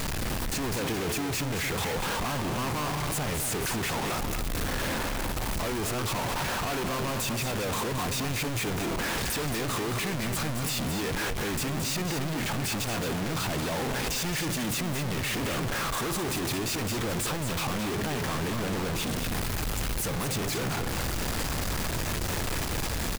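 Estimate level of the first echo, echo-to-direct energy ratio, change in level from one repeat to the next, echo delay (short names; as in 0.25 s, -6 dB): -7.0 dB, -7.0 dB, no steady repeat, 0.222 s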